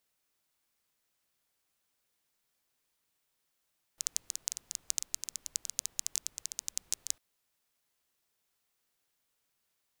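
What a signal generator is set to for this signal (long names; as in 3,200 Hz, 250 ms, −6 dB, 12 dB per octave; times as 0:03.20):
rain-like ticks over hiss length 3.20 s, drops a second 12, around 6,600 Hz, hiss −27 dB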